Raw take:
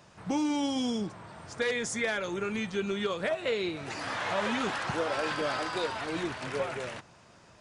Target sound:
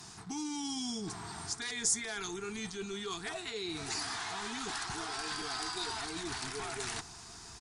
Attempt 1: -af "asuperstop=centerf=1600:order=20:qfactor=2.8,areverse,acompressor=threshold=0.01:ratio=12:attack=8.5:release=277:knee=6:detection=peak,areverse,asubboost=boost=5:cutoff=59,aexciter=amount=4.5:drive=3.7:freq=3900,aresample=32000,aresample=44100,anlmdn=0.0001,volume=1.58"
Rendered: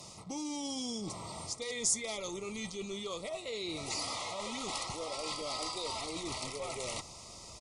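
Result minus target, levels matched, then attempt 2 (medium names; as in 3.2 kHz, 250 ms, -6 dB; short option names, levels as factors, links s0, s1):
2 kHz band -4.5 dB
-af "asuperstop=centerf=550:order=20:qfactor=2.8,areverse,acompressor=threshold=0.01:ratio=12:attack=8.5:release=277:knee=6:detection=peak,areverse,asubboost=boost=5:cutoff=59,aexciter=amount=4.5:drive=3.7:freq=3900,aresample=32000,aresample=44100,anlmdn=0.0001,volume=1.58"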